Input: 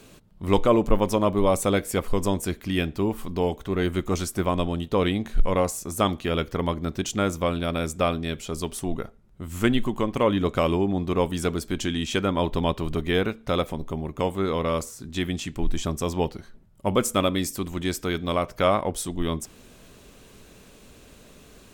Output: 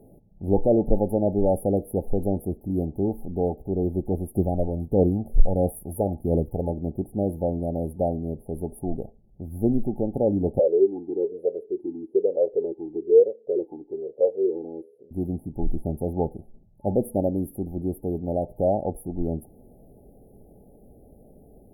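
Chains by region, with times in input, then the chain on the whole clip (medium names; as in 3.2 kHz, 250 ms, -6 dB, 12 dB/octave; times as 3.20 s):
4.35–6.70 s: treble shelf 8.4 kHz +6.5 dB + phaser 1.5 Hz, delay 2.2 ms, feedback 44%
10.59–15.11 s: FFT filter 270 Hz 0 dB, 430 Hz +13 dB, 890 Hz +5 dB + talking filter e-u 1.1 Hz
whole clip: FFT band-reject 870–9600 Hz; treble shelf 6 kHz -10 dB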